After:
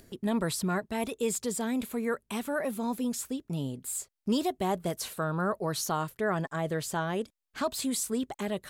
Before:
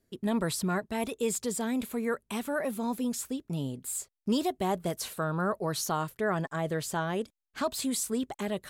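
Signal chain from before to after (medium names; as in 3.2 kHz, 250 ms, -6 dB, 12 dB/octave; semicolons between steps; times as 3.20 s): upward compressor, threshold -42 dBFS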